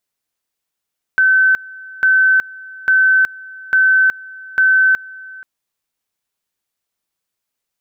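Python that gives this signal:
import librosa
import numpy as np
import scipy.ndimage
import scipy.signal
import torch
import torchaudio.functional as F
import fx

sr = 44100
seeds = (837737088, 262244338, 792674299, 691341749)

y = fx.two_level_tone(sr, hz=1530.0, level_db=-8.5, drop_db=22.5, high_s=0.37, low_s=0.48, rounds=5)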